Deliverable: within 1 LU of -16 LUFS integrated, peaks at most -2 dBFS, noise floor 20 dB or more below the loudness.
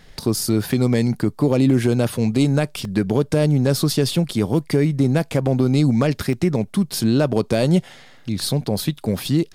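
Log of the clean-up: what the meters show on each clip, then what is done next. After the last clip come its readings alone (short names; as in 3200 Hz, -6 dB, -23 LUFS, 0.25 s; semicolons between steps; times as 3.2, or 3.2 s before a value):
dropouts 2; longest dropout 1.4 ms; loudness -19.5 LUFS; peak -6.0 dBFS; loudness target -16.0 LUFS
-> interpolate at 2.85/6.33, 1.4 ms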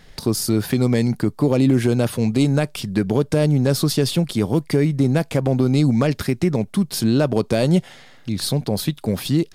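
dropouts 0; loudness -19.5 LUFS; peak -6.0 dBFS; loudness target -16.0 LUFS
-> gain +3.5 dB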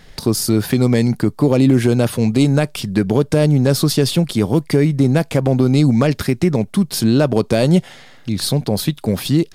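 loudness -16.0 LUFS; peak -2.5 dBFS; noise floor -43 dBFS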